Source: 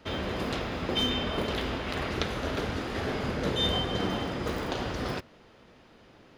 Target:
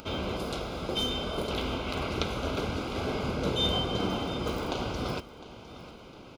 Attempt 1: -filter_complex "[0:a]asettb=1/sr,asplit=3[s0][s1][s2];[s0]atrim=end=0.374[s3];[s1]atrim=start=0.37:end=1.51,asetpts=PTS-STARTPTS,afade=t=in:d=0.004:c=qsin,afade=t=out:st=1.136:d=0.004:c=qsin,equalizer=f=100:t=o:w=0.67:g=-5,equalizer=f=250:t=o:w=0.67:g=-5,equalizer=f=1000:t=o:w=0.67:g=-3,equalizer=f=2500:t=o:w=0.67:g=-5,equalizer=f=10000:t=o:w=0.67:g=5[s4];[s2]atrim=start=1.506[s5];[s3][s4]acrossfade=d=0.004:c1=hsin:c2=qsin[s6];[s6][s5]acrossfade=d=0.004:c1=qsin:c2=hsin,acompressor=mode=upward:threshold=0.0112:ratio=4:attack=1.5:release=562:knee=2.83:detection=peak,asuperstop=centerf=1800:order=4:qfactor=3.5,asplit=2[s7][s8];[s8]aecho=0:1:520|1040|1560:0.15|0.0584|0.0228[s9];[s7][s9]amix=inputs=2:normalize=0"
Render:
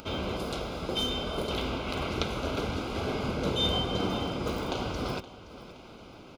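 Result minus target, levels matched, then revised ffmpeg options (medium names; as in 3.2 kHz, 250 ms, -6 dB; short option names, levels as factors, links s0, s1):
echo 186 ms early
-filter_complex "[0:a]asettb=1/sr,asplit=3[s0][s1][s2];[s0]atrim=end=0.374[s3];[s1]atrim=start=0.37:end=1.51,asetpts=PTS-STARTPTS,afade=t=in:d=0.004:c=qsin,afade=t=out:st=1.136:d=0.004:c=qsin,equalizer=f=100:t=o:w=0.67:g=-5,equalizer=f=250:t=o:w=0.67:g=-5,equalizer=f=1000:t=o:w=0.67:g=-3,equalizer=f=2500:t=o:w=0.67:g=-5,equalizer=f=10000:t=o:w=0.67:g=5[s4];[s2]atrim=start=1.506[s5];[s3][s4]acrossfade=d=0.004:c1=hsin:c2=qsin[s6];[s6][s5]acrossfade=d=0.004:c1=qsin:c2=hsin,acompressor=mode=upward:threshold=0.0112:ratio=4:attack=1.5:release=562:knee=2.83:detection=peak,asuperstop=centerf=1800:order=4:qfactor=3.5,asplit=2[s7][s8];[s8]aecho=0:1:706|1412|2118:0.15|0.0584|0.0228[s9];[s7][s9]amix=inputs=2:normalize=0"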